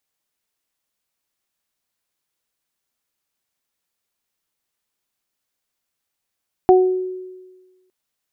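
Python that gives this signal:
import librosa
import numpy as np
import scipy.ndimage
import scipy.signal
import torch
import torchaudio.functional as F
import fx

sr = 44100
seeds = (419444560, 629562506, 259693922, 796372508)

y = fx.additive(sr, length_s=1.21, hz=370.0, level_db=-7.0, upper_db=(-3.0,), decay_s=1.34, upper_decays_s=(0.38,))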